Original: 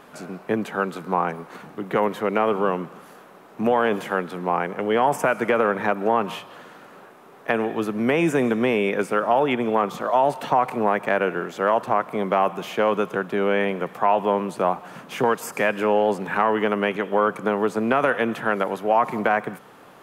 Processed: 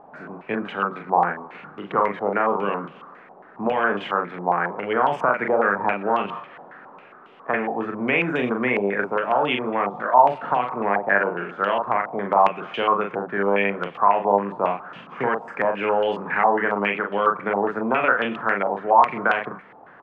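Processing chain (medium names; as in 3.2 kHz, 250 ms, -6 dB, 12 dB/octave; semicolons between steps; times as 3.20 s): doubling 40 ms -4 dB; step-sequenced low-pass 7.3 Hz 800–3000 Hz; trim -5 dB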